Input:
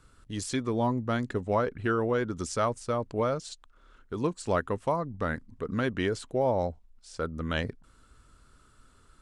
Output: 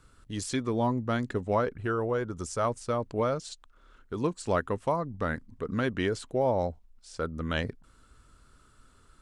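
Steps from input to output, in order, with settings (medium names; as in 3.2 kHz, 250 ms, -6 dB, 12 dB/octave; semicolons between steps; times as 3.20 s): 1.73–2.65 s: graphic EQ 250/2000/4000 Hz -5/-4/-6 dB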